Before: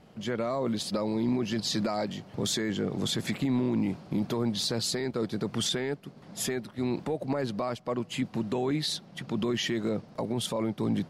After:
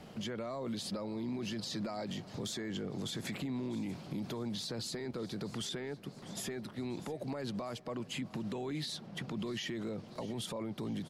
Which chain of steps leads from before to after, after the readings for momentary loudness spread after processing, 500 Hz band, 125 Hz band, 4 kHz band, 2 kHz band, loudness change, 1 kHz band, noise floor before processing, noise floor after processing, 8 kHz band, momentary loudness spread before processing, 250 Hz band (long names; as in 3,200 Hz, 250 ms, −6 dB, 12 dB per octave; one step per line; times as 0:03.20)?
3 LU, −9.5 dB, −8.0 dB, −9.0 dB, −8.0 dB, −9.0 dB, −9.5 dB, −52 dBFS, −52 dBFS, −9.5 dB, 5 LU, −9.0 dB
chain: brickwall limiter −28.5 dBFS, peak gain reduction 8.5 dB
repeating echo 643 ms, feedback 47%, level −21.5 dB
multiband upward and downward compressor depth 40%
level −2.5 dB